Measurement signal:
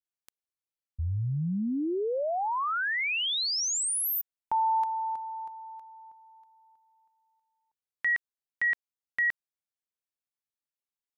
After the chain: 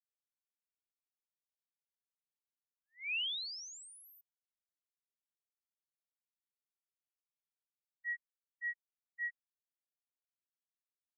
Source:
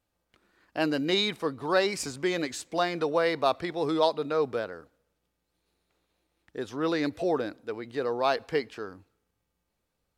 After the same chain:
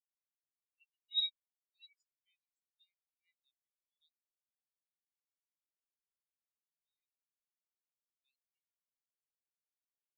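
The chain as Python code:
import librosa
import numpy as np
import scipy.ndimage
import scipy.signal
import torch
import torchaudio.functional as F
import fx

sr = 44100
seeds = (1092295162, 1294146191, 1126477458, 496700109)

y = scipy.signal.sosfilt(scipy.signal.cheby2(6, 70, 1000.0, 'highpass', fs=sr, output='sos'), x)
y = fx.spectral_expand(y, sr, expansion=4.0)
y = y * 10.0 ** (-6.0 / 20.0)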